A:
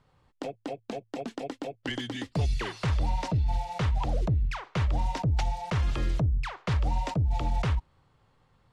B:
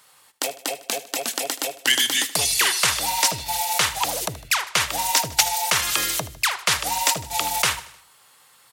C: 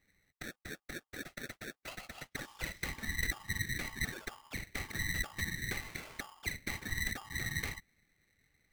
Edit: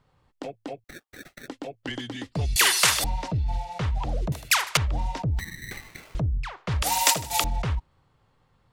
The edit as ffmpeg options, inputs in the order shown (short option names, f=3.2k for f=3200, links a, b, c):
-filter_complex "[2:a]asplit=2[a][b];[1:a]asplit=3[c][d][e];[0:a]asplit=6[f][g][h][i][j][k];[f]atrim=end=0.842[l];[a]atrim=start=0.838:end=1.482[m];[g]atrim=start=1.478:end=2.562[n];[c]atrim=start=2.558:end=3.042[o];[h]atrim=start=3.038:end=4.322[p];[d]atrim=start=4.318:end=4.772[q];[i]atrim=start=4.768:end=5.392[r];[b]atrim=start=5.388:end=6.152[s];[j]atrim=start=6.148:end=6.822[t];[e]atrim=start=6.818:end=7.442[u];[k]atrim=start=7.438[v];[l][m]acrossfade=d=0.004:c1=hsin:c2=hsin[w];[w][n]acrossfade=d=0.004:c1=hsin:c2=hsin[x];[x][o]acrossfade=d=0.004:c1=hsin:c2=hsin[y];[y][p]acrossfade=d=0.004:c1=hsin:c2=hsin[z];[z][q]acrossfade=d=0.004:c1=hsin:c2=hsin[aa];[aa][r]acrossfade=d=0.004:c1=hsin:c2=hsin[ab];[ab][s]acrossfade=d=0.004:c1=hsin:c2=hsin[ac];[ac][t]acrossfade=d=0.004:c1=hsin:c2=hsin[ad];[ad][u]acrossfade=d=0.004:c1=hsin:c2=hsin[ae];[ae][v]acrossfade=d=0.004:c1=hsin:c2=hsin"